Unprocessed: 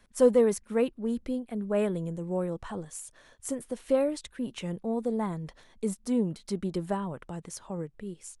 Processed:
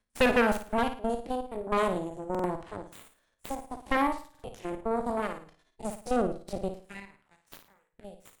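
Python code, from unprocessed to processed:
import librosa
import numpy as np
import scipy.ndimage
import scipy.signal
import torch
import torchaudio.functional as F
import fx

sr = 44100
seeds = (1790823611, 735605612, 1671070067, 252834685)

p1 = fx.spec_steps(x, sr, hold_ms=50)
p2 = fx.comb(p1, sr, ms=2.9, depth=0.64, at=(5.0, 6.07))
p3 = fx.highpass(p2, sr, hz=850.0, slope=24, at=(6.72, 7.93))
p4 = fx.cheby_harmonics(p3, sr, harmonics=(7, 8), levels_db=(-15, -8), full_scale_db=-12.0)
p5 = p4 + fx.room_flutter(p4, sr, wall_m=9.5, rt60_s=0.39, dry=0)
p6 = fx.buffer_glitch(p5, sr, at_s=(2.3, 4.3), block=2048, repeats=2)
y = p6 * 10.0 ** (-3.5 / 20.0)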